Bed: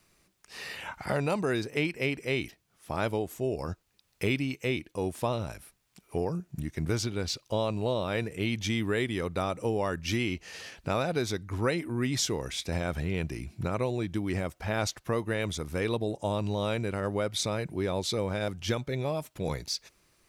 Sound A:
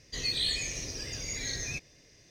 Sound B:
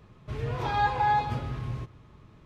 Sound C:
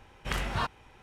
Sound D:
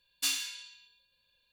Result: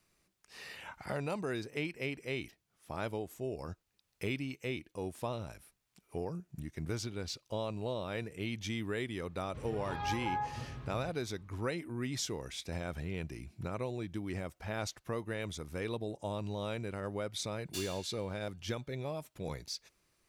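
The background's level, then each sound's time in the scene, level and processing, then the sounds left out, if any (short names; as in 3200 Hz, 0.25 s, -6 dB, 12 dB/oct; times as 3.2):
bed -8 dB
9.26 add B -11.5 dB + treble ducked by the level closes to 1800 Hz, closed at -20 dBFS
17.51 add D -11.5 dB
not used: A, C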